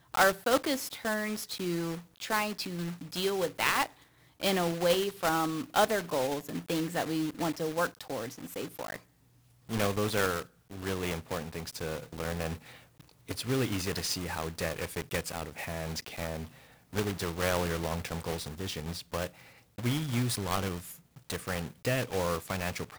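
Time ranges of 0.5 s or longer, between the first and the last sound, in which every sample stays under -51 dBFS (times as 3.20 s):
9.02–9.69 s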